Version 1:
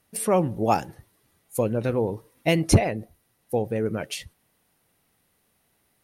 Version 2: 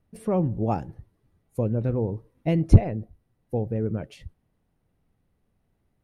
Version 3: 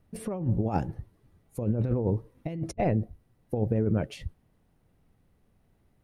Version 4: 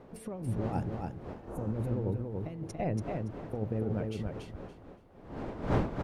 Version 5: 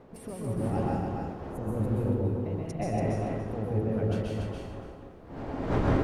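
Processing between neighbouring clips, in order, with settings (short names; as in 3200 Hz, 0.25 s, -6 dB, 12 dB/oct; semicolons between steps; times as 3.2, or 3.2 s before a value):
tilt -4 dB/oct; gain -8.5 dB
negative-ratio compressor -27 dBFS, ratio -0.5
wind noise 470 Hz -34 dBFS; feedback echo 0.284 s, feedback 22%, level -4 dB; spectral repair 1.45–1.71, 1600–5700 Hz before; gain -7 dB
plate-style reverb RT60 0.81 s, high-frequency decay 0.9×, pre-delay 0.115 s, DRR -3.5 dB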